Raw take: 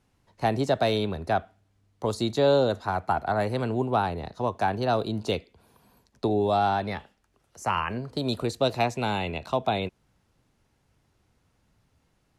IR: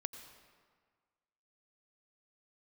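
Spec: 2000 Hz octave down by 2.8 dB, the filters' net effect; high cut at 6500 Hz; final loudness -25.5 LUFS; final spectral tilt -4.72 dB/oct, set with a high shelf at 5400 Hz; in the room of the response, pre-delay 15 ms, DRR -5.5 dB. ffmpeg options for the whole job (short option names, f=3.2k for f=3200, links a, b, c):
-filter_complex "[0:a]lowpass=6.5k,equalizer=f=2k:t=o:g=-5,highshelf=f=5.4k:g=6.5,asplit=2[a][b];[1:a]atrim=start_sample=2205,adelay=15[c];[b][c]afir=irnorm=-1:irlink=0,volume=7dB[d];[a][d]amix=inputs=2:normalize=0,volume=-4dB"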